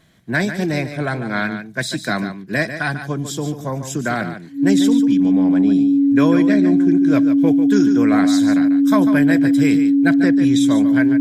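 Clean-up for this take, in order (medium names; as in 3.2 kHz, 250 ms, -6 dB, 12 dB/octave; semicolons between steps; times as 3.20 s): band-stop 280 Hz, Q 30; inverse comb 145 ms -10 dB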